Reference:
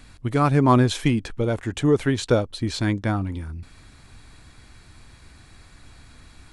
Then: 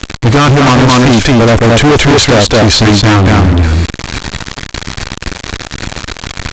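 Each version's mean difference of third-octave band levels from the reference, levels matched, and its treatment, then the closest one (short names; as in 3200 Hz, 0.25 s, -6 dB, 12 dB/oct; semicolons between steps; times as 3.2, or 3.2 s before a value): 12.0 dB: on a send: echo 0.222 s -3.5 dB; on the sum: fuzz box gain 35 dB, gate -42 dBFS; maximiser +22 dB; gain -2.5 dB; A-law 128 kbps 16000 Hz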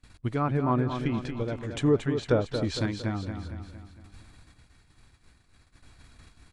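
5.0 dB: treble ducked by the level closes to 1900 Hz, closed at -14 dBFS; gate -46 dBFS, range -23 dB; random-step tremolo; feedback echo 0.229 s, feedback 50%, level -8 dB; gain -3.5 dB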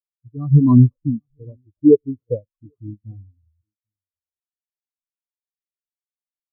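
17.0 dB: sample-and-hold 15×; Butterworth band-stop 1800 Hz, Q 2.4; on a send: tapped delay 95/795 ms -19.5/-13.5 dB; on the sum: spectral expander 4:1; gain +3.5 dB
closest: second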